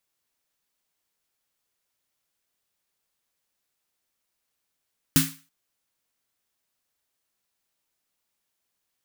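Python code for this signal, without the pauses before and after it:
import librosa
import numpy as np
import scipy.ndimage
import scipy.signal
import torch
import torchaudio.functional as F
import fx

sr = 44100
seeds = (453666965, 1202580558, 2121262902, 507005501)

y = fx.drum_snare(sr, seeds[0], length_s=0.33, hz=160.0, second_hz=270.0, noise_db=-0.5, noise_from_hz=1200.0, decay_s=0.3, noise_decay_s=0.35)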